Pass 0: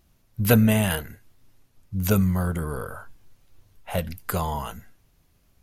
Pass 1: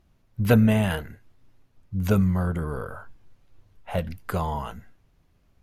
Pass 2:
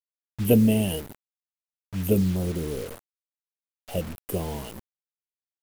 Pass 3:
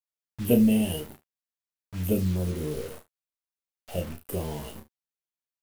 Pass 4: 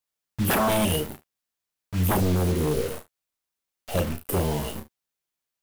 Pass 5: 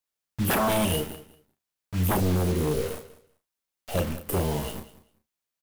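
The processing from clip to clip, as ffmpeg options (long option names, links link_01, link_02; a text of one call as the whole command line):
ffmpeg -i in.wav -af "lowpass=frequency=2400:poles=1" out.wav
ffmpeg -i in.wav -af "firequalizer=gain_entry='entry(130,0);entry(330,10);entry(740,-3);entry(1400,-20);entry(3000,8);entry(4400,-25);entry(8800,12)':delay=0.05:min_phase=1,acrusher=bits=5:mix=0:aa=0.000001,volume=-4dB" out.wav
ffmpeg -i in.wav -filter_complex "[0:a]asplit=2[link_01][link_02];[link_02]adelay=13,volume=-9dB[link_03];[link_01][link_03]amix=inputs=2:normalize=0,aecho=1:1:33|74:0.501|0.133,volume=-4dB" out.wav
ffmpeg -i in.wav -af "aeval=exprs='0.0562*(abs(mod(val(0)/0.0562+3,4)-2)-1)':channel_layout=same,volume=8dB" out.wav
ffmpeg -i in.wav -af "aecho=1:1:194|388:0.141|0.0254,volume=-1.5dB" out.wav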